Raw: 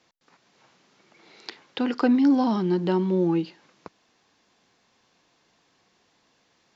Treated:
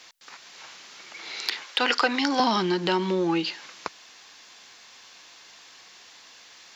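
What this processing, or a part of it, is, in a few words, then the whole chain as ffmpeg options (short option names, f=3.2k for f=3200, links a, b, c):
mastering chain: -filter_complex "[0:a]asettb=1/sr,asplit=3[a][b][c];[a]atrim=end=1.644[d];[b]atrim=start=1.64:end=2.4,asetpts=PTS-STARTPTS,afade=t=in:d=0.004:c=qsin,afade=t=out:st=0.756:d=0.004:c=qsin,highpass=430[e];[c]atrim=start=2.396[f];[d][e]acrossfade=d=0.004:c1=hsin:c2=qsin[g];[g][f]acrossfade=d=0.004:c1=qsin:c2=hsin,equalizer=f=170:t=o:w=1.1:g=-3.5,acompressor=threshold=-28dB:ratio=2.5,asoftclip=type=tanh:threshold=-17.5dB,tiltshelf=f=860:g=-9,asoftclip=type=hard:threshold=-13dB,alimiter=level_in=19dB:limit=-1dB:release=50:level=0:latency=1,volume=-8dB"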